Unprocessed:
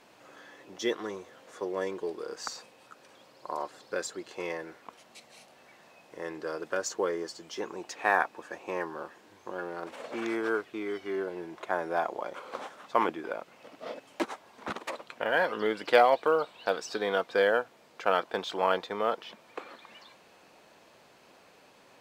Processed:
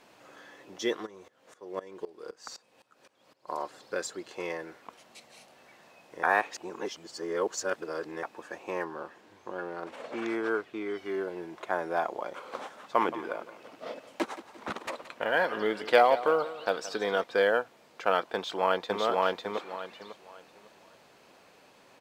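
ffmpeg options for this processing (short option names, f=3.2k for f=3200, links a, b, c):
-filter_complex "[0:a]asplit=3[a][b][c];[a]afade=t=out:st=1.05:d=0.02[d];[b]aeval=exprs='val(0)*pow(10,-20*if(lt(mod(-3.9*n/s,1),2*abs(-3.9)/1000),1-mod(-3.9*n/s,1)/(2*abs(-3.9)/1000),(mod(-3.9*n/s,1)-2*abs(-3.9)/1000)/(1-2*abs(-3.9)/1000))/20)':c=same,afade=t=in:st=1.05:d=0.02,afade=t=out:st=3.47:d=0.02[e];[c]afade=t=in:st=3.47:d=0.02[f];[d][e][f]amix=inputs=3:normalize=0,asettb=1/sr,asplit=3[g][h][i];[g]atrim=end=8.844[j];[h]atrim=start=8.84:end=10.98,asetpts=PTS-STARTPTS,afade=t=in:d=0.004:c=qsin,afade=t=out:st=2.136:d=0.004:c=qsin,highshelf=f=6.3k:g=-7[k];[i]atrim=start=10.976[l];[j][k]acrossfade=d=0.004:c1=hsin:c2=qsin[m];[m][l]acrossfade=d=0.004:c1=qsin:c2=hsin,asettb=1/sr,asplit=3[n][o][p];[n]atrim=end=12.574[q];[o]atrim=start=12.57:end=17.24,asetpts=PTS-STARTPTS,afade=t=in:d=0.004:c=qsin,afade=t=out:st=4.666:d=0.004:c=qsin,aecho=1:1:173|346|519|692:0.178|0.08|0.036|0.0162,atrim=end_sample=205947[r];[p]atrim=start=17.236[s];[q][r]acrossfade=d=0.004:c1=hsin:c2=qsin[t];[t][s]acrossfade=d=0.004:c1=qsin:c2=hsin,asplit=2[u][v];[v]afade=t=in:st=18.34:d=0.01,afade=t=out:st=19.02:d=0.01,aecho=0:1:550|1100|1650|2200:0.944061|0.236015|0.0590038|0.014751[w];[u][w]amix=inputs=2:normalize=0,asplit=3[x][y][z];[x]atrim=end=6.232[aa];[y]atrim=start=6.228:end=8.232,asetpts=PTS-STARTPTS,areverse[ab];[z]atrim=start=8.228[ac];[aa][ab]acrossfade=d=0.004:c1=hsin:c2=hsin[ad];[ad][ac]acrossfade=d=0.004:c1=hsin:c2=hsin"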